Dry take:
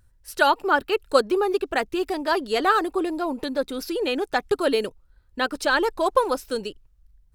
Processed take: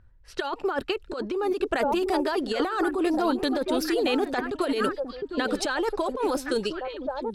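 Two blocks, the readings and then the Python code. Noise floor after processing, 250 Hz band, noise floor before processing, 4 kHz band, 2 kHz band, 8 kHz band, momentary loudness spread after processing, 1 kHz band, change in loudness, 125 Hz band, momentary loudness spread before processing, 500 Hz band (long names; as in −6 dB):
−51 dBFS, +1.5 dB, −59 dBFS, −3.0 dB, −6.5 dB, −1.0 dB, 7 LU, −5.5 dB, −3.5 dB, can't be measured, 8 LU, −3.0 dB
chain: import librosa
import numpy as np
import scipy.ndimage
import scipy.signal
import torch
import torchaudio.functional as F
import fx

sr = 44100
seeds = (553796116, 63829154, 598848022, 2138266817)

y = fx.echo_stepped(x, sr, ms=707, hz=240.0, octaves=1.4, feedback_pct=70, wet_db=-5.5)
y = fx.over_compress(y, sr, threshold_db=-25.0, ratio=-1.0)
y = fx.env_lowpass(y, sr, base_hz=2200.0, full_db=-21.0)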